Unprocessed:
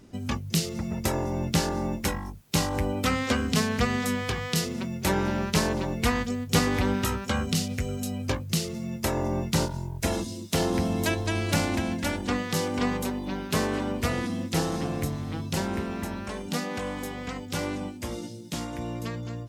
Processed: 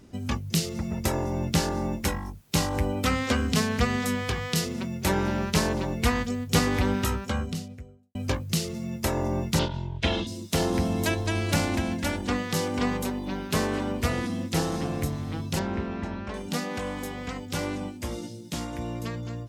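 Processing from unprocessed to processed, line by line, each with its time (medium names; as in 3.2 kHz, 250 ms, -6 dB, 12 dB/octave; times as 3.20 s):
6.99–8.15 s: studio fade out
9.59–10.27 s: resonant low-pass 3.3 kHz, resonance Q 4.1
15.59–16.34 s: distance through air 150 m
whole clip: peaking EQ 69 Hz +5 dB 0.53 oct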